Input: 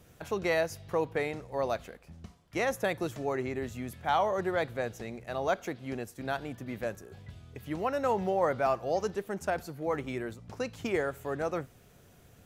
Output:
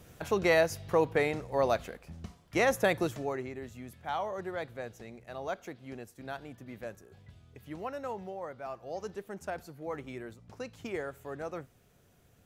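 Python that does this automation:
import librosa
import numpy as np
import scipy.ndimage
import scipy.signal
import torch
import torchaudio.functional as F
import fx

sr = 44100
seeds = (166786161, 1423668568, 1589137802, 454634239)

y = fx.gain(x, sr, db=fx.line((2.99, 3.5), (3.54, -7.0), (7.86, -7.0), (8.56, -14.5), (9.13, -6.5)))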